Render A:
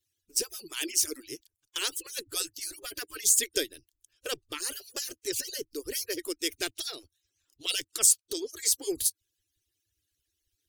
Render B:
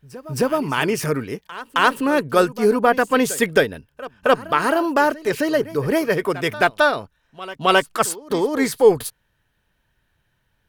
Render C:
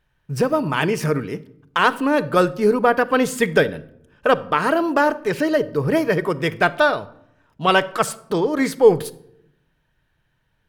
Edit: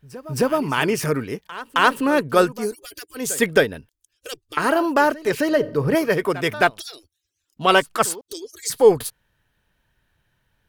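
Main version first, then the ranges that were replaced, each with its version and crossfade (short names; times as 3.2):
B
2.63–3.26 from A, crossfade 0.24 s
3.89–4.57 from A
5.49–5.95 from C
6.79–7.57 from A
8.21–8.7 from A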